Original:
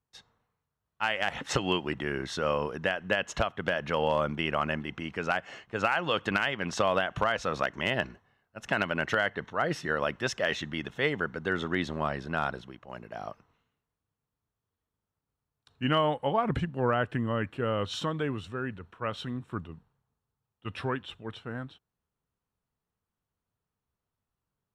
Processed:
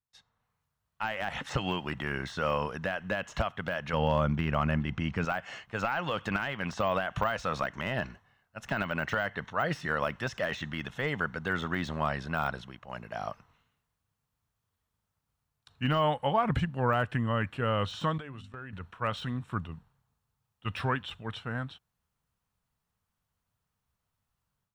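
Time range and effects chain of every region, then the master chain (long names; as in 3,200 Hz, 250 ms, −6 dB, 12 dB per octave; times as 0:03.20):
0:03.93–0:05.25: low-pass filter 7,600 Hz 24 dB per octave + low-shelf EQ 310 Hz +12 dB
0:18.18–0:18.73: noise gate −39 dBFS, range −15 dB + mains-hum notches 50/100/150/200/250 Hz + downward compressor 12 to 1, threshold −40 dBFS
whole clip: automatic gain control gain up to 14 dB; parametric band 360 Hz −9 dB 1.2 octaves; de-essing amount 80%; level −8.5 dB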